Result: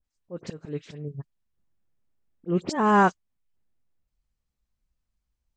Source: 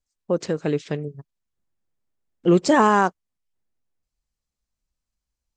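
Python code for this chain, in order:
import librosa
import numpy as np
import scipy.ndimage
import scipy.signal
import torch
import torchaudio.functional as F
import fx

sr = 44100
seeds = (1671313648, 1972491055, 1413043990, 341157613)

y = fx.auto_swell(x, sr, attack_ms=300.0)
y = fx.bass_treble(y, sr, bass_db=5, treble_db=-6)
y = fx.dispersion(y, sr, late='highs', ms=47.0, hz=2500.0)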